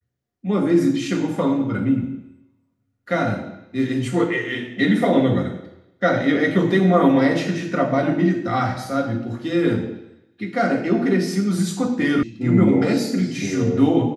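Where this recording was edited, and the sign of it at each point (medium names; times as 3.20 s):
12.23 s: sound stops dead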